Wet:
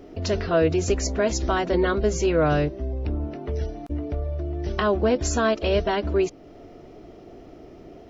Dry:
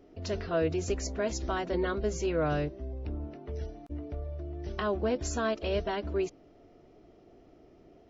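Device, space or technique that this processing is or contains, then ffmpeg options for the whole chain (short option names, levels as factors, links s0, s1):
parallel compression: -filter_complex "[0:a]asplit=2[s0][s1];[s1]acompressor=threshold=0.00631:ratio=6,volume=0.794[s2];[s0][s2]amix=inputs=2:normalize=0,volume=2.37"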